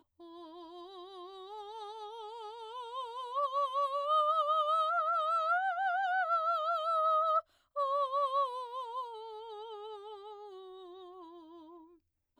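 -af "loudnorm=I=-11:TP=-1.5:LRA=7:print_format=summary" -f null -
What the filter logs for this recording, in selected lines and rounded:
Input Integrated:    -32.7 LUFS
Input True Peak:     -20.6 dBTP
Input LRA:            18.2 LU
Input Threshold:     -45.4 LUFS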